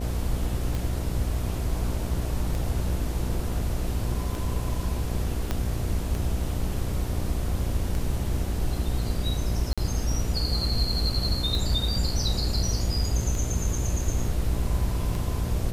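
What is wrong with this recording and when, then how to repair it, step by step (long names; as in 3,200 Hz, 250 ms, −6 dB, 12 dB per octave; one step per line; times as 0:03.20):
mains buzz 60 Hz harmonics 12 −30 dBFS
scratch tick 33 1/3 rpm
0:05.51: click −13 dBFS
0:09.73–0:09.78: drop-out 46 ms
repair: click removal
hum removal 60 Hz, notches 12
repair the gap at 0:09.73, 46 ms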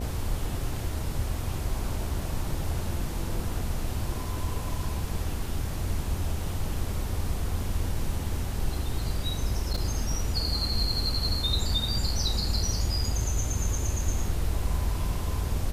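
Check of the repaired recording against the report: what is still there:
0:05.51: click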